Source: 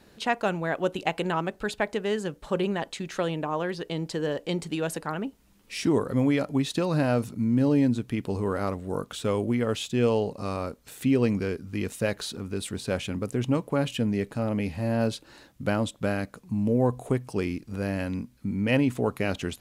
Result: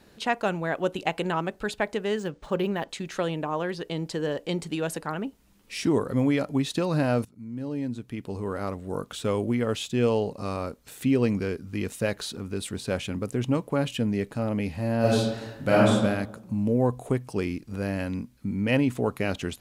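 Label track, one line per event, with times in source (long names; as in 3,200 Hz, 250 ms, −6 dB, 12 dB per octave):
2.180000	2.890000	linearly interpolated sample-rate reduction rate divided by 3×
7.250000	9.200000	fade in, from −19.5 dB
15.000000	15.930000	thrown reverb, RT60 1 s, DRR −6.5 dB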